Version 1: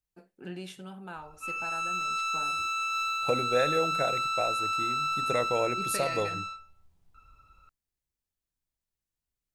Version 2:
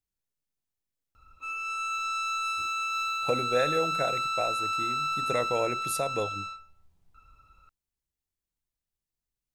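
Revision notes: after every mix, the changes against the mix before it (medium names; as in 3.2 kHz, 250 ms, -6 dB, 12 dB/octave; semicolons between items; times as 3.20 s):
first voice: muted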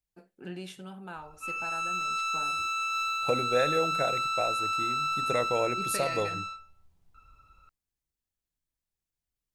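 first voice: unmuted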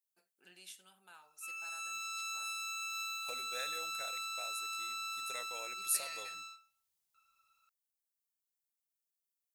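master: add differentiator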